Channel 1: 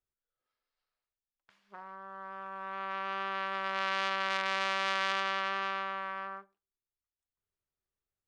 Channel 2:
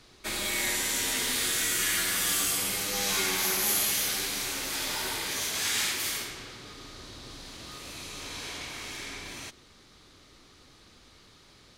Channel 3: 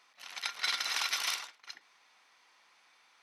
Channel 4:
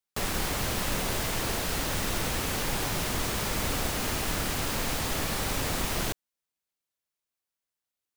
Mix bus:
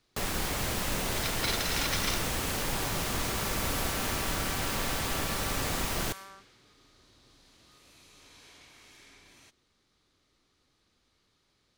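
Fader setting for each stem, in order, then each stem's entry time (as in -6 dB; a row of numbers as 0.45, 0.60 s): -9.0, -16.5, -1.0, -2.0 dB; 0.00, 0.00, 0.80, 0.00 s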